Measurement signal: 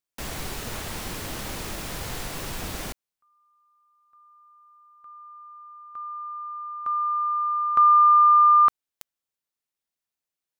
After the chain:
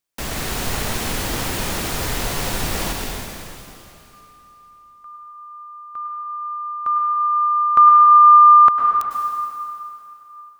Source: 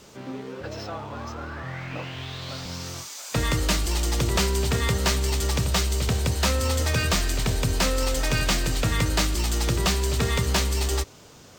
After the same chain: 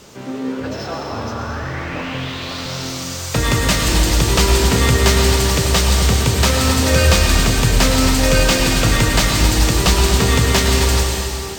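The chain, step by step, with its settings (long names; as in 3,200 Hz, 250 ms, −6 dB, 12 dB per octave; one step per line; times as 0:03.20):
dense smooth reverb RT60 2.9 s, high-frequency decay 1×, pre-delay 90 ms, DRR −0.5 dB
level +6.5 dB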